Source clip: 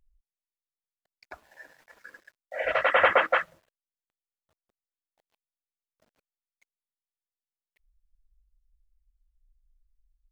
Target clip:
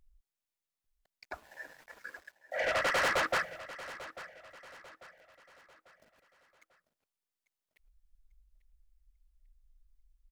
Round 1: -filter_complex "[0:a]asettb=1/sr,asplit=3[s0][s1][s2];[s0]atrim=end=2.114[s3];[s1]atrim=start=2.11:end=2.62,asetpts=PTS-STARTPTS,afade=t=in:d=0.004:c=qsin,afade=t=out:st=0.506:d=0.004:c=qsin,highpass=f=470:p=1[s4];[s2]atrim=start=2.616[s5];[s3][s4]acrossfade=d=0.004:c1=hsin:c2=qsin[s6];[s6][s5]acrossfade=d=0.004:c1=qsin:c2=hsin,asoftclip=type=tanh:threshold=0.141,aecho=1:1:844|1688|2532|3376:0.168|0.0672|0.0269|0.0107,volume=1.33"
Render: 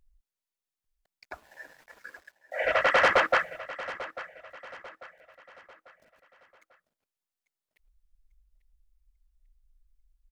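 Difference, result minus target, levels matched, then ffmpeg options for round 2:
saturation: distortion -8 dB
-filter_complex "[0:a]asettb=1/sr,asplit=3[s0][s1][s2];[s0]atrim=end=2.114[s3];[s1]atrim=start=2.11:end=2.62,asetpts=PTS-STARTPTS,afade=t=in:d=0.004:c=qsin,afade=t=out:st=0.506:d=0.004:c=qsin,highpass=f=470:p=1[s4];[s2]atrim=start=2.616[s5];[s3][s4]acrossfade=d=0.004:c1=hsin:c2=qsin[s6];[s6][s5]acrossfade=d=0.004:c1=qsin:c2=hsin,asoftclip=type=tanh:threshold=0.0355,aecho=1:1:844|1688|2532|3376:0.168|0.0672|0.0269|0.0107,volume=1.33"

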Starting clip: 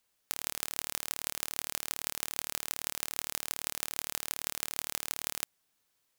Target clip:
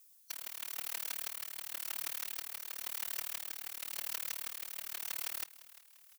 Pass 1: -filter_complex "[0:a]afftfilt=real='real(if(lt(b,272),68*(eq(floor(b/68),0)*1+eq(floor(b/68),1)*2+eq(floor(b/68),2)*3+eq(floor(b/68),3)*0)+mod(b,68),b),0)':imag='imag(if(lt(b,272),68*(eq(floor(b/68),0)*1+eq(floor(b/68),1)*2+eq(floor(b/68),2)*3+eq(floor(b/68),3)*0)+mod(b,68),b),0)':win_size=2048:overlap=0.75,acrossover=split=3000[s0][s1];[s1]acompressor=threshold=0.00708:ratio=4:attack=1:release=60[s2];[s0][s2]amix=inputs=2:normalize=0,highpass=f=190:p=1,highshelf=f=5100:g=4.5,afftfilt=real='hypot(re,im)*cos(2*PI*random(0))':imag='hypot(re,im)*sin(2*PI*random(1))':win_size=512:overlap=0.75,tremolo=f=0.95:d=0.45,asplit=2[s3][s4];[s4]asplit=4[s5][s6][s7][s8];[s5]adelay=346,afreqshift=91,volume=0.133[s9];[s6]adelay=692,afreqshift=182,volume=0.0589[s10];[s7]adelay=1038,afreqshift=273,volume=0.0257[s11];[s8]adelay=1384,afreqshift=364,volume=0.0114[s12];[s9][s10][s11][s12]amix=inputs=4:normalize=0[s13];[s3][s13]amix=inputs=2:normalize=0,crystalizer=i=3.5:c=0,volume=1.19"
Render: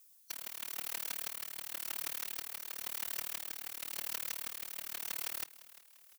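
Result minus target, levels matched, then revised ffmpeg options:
250 Hz band +5.0 dB
-filter_complex "[0:a]afftfilt=real='real(if(lt(b,272),68*(eq(floor(b/68),0)*1+eq(floor(b/68),1)*2+eq(floor(b/68),2)*3+eq(floor(b/68),3)*0)+mod(b,68),b),0)':imag='imag(if(lt(b,272),68*(eq(floor(b/68),0)*1+eq(floor(b/68),1)*2+eq(floor(b/68),2)*3+eq(floor(b/68),3)*0)+mod(b,68),b),0)':win_size=2048:overlap=0.75,acrossover=split=3000[s0][s1];[s1]acompressor=threshold=0.00708:ratio=4:attack=1:release=60[s2];[s0][s2]amix=inputs=2:normalize=0,highpass=f=530:p=1,highshelf=f=5100:g=4.5,afftfilt=real='hypot(re,im)*cos(2*PI*random(0))':imag='hypot(re,im)*sin(2*PI*random(1))':win_size=512:overlap=0.75,tremolo=f=0.95:d=0.45,asplit=2[s3][s4];[s4]asplit=4[s5][s6][s7][s8];[s5]adelay=346,afreqshift=91,volume=0.133[s9];[s6]adelay=692,afreqshift=182,volume=0.0589[s10];[s7]adelay=1038,afreqshift=273,volume=0.0257[s11];[s8]adelay=1384,afreqshift=364,volume=0.0114[s12];[s9][s10][s11][s12]amix=inputs=4:normalize=0[s13];[s3][s13]amix=inputs=2:normalize=0,crystalizer=i=3.5:c=0,volume=1.19"

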